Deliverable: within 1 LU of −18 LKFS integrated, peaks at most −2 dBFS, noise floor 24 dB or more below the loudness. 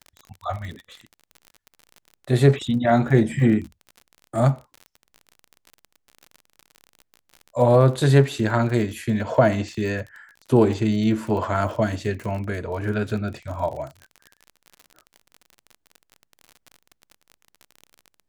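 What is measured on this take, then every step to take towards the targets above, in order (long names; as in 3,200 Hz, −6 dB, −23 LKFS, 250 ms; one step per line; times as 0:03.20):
crackle rate 40 per second; integrated loudness −22.0 LKFS; sample peak −2.5 dBFS; target loudness −18.0 LKFS
→ click removal
level +4 dB
brickwall limiter −2 dBFS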